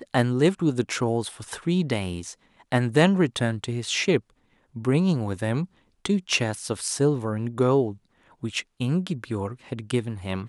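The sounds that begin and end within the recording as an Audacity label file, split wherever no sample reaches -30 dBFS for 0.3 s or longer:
2.720000	4.190000	sound
4.760000	5.650000	sound
6.050000	7.930000	sound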